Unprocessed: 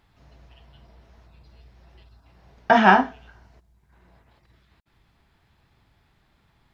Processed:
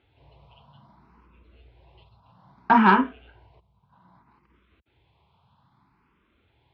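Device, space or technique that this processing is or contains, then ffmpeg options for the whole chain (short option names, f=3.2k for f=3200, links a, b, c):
barber-pole phaser into a guitar amplifier: -filter_complex "[0:a]asplit=2[a][b];[b]afreqshift=0.62[c];[a][c]amix=inputs=2:normalize=1,asoftclip=type=tanh:threshold=-10dB,highpass=80,equalizer=f=660:t=q:w=4:g=-4,equalizer=f=1k:t=q:w=4:g=7,equalizer=f=1.8k:t=q:w=4:g=-10,lowpass=f=3.6k:w=0.5412,lowpass=f=3.6k:w=1.3066,volume=3dB"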